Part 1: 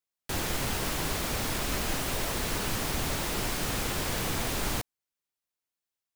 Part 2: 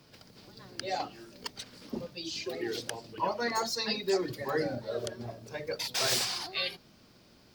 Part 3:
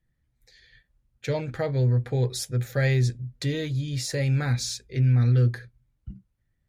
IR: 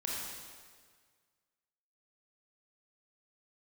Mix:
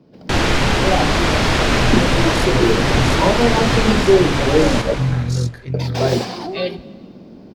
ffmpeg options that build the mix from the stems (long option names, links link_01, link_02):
-filter_complex "[0:a]lowpass=4300,volume=2dB,asplit=2[link_01][link_02];[link_02]volume=-4dB[link_03];[1:a]firequalizer=gain_entry='entry(120,0);entry(180,11);entry(1300,-8);entry(8800,-21)':delay=0.05:min_phase=1,volume=2.5dB,asplit=3[link_04][link_05][link_06];[link_04]atrim=end=4.94,asetpts=PTS-STARTPTS,afade=type=out:start_time=4.936:duration=0.004:curve=hsin[link_07];[link_05]atrim=start=4.94:end=5.74,asetpts=PTS-STARTPTS,volume=0[link_08];[link_06]atrim=start=5.74,asetpts=PTS-STARTPTS,afade=type=in:duration=0.004:curve=hsin[link_09];[link_07][link_08][link_09]concat=n=3:v=0:a=1,asplit=2[link_10][link_11];[link_11]volume=-18dB[link_12];[2:a]tremolo=f=45:d=0.621,volume=-8dB,asplit=2[link_13][link_14];[link_14]volume=-3dB[link_15];[3:a]atrim=start_sample=2205[link_16];[link_03][link_12]amix=inputs=2:normalize=0[link_17];[link_17][link_16]afir=irnorm=-1:irlink=0[link_18];[link_15]aecho=0:1:704:1[link_19];[link_01][link_10][link_13][link_18][link_19]amix=inputs=5:normalize=0,dynaudnorm=framelen=120:gausssize=3:maxgain=11dB"